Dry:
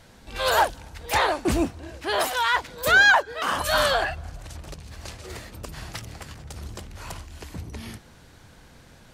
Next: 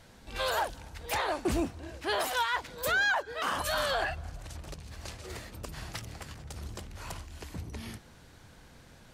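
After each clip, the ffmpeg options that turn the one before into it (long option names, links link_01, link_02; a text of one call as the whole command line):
ffmpeg -i in.wav -af "alimiter=limit=-16.5dB:level=0:latency=1:release=99,volume=-4dB" out.wav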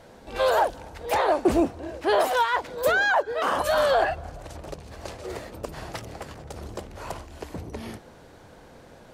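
ffmpeg -i in.wav -af "equalizer=frequency=530:width_type=o:width=2.3:gain=12.5" out.wav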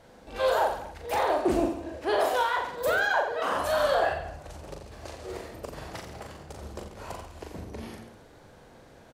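ffmpeg -i in.wav -af "aecho=1:1:40|86|138.9|199.7|269.7:0.631|0.398|0.251|0.158|0.1,volume=-5.5dB" out.wav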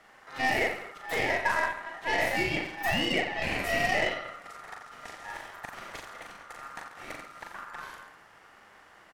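ffmpeg -i in.wav -af "aeval=exprs='val(0)*sin(2*PI*1300*n/s)':channel_layout=same,aeval=exprs='0.211*(cos(1*acos(clip(val(0)/0.211,-1,1)))-cos(1*PI/2))+0.0119*(cos(8*acos(clip(val(0)/0.211,-1,1)))-cos(8*PI/2))':channel_layout=same" out.wav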